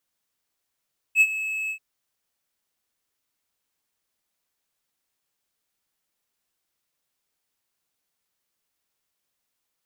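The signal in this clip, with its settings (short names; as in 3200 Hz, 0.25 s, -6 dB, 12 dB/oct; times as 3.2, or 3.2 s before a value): ADSR triangle 2590 Hz, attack 59 ms, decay 52 ms, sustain -14.5 dB, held 0.55 s, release 84 ms -9.5 dBFS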